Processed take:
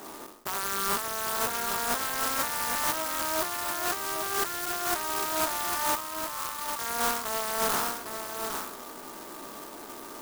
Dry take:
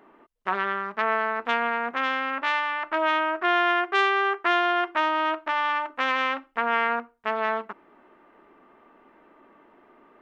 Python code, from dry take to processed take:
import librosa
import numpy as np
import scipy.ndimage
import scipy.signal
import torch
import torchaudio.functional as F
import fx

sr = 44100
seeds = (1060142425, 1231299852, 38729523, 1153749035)

y = fx.spec_trails(x, sr, decay_s=0.66)
y = fx.peak_eq(y, sr, hz=1600.0, db=5.0, octaves=2.3)
y = fx.over_compress(y, sr, threshold_db=-30.0, ratio=-1.0)
y = np.clip(y, -10.0 ** (-22.5 / 20.0), 10.0 ** (-22.5 / 20.0))
y = fx.double_bandpass(y, sr, hz=2400.0, octaves=2.1, at=(5.95, 6.79))
y = y + 10.0 ** (-6.5 / 20.0) * np.pad(y, (int(805 * sr / 1000.0), 0))[:len(y)]
y = fx.clock_jitter(y, sr, seeds[0], jitter_ms=0.11)